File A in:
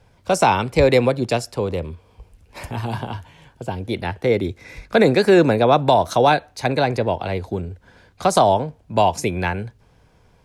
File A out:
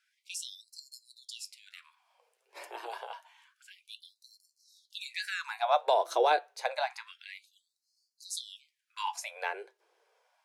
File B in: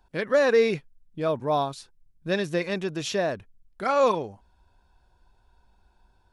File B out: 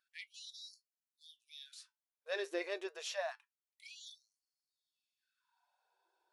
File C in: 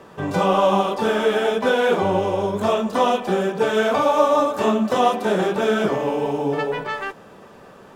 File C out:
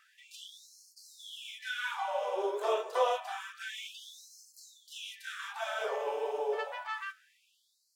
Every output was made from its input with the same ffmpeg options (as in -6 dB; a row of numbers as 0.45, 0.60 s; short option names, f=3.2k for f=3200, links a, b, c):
-af "flanger=delay=5.8:depth=4.6:regen=72:speed=0.33:shape=triangular,afftfilt=real='re*gte(b*sr/1024,320*pow(4200/320,0.5+0.5*sin(2*PI*0.28*pts/sr)))':imag='im*gte(b*sr/1024,320*pow(4200/320,0.5+0.5*sin(2*PI*0.28*pts/sr)))':win_size=1024:overlap=0.75,volume=-6dB"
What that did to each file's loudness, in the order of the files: -14.0, -18.5, -15.5 LU